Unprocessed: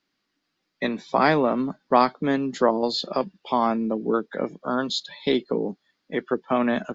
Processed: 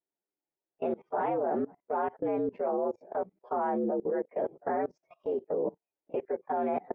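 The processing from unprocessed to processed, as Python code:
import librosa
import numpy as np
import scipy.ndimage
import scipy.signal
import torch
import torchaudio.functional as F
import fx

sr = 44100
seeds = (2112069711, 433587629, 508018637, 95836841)

y = fx.partial_stretch(x, sr, pct=116)
y = scipy.signal.sosfilt(scipy.signal.butter(4, 2200.0, 'lowpass', fs=sr, output='sos'), y)
y = fx.band_shelf(y, sr, hz=560.0, db=13.5, octaves=1.7)
y = fx.level_steps(y, sr, step_db=23)
y = F.gain(torch.from_numpy(y), -6.0).numpy()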